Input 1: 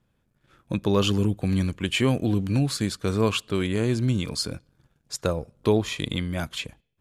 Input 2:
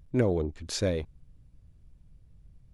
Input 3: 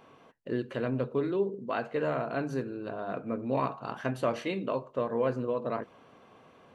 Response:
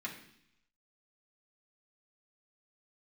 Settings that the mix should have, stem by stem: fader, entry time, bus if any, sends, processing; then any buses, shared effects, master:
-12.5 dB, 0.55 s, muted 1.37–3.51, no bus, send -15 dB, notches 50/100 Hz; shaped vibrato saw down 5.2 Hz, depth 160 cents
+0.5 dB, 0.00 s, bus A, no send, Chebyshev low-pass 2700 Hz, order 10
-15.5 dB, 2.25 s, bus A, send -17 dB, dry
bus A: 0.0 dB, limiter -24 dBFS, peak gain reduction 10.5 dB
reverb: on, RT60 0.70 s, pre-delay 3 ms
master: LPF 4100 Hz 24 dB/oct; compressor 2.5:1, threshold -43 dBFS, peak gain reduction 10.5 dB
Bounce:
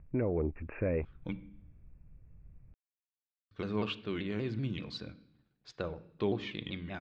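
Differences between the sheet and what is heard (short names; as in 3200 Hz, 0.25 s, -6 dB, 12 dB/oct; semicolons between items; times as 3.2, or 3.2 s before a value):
stem 1: send -15 dB -> -7.5 dB; stem 3: muted; master: missing compressor 2.5:1, threshold -43 dBFS, peak gain reduction 10.5 dB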